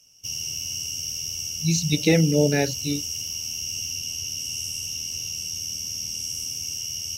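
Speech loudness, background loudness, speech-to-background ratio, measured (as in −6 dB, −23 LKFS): −22.5 LKFS, −28.0 LKFS, 5.5 dB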